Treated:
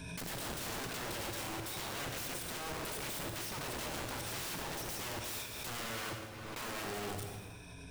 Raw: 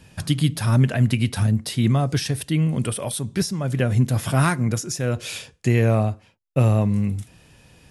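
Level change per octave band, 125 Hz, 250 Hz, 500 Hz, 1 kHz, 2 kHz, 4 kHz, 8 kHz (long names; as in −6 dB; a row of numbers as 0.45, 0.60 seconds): −28.0, −23.0, −16.5, −11.0, −10.0, −9.0, −9.5 decibels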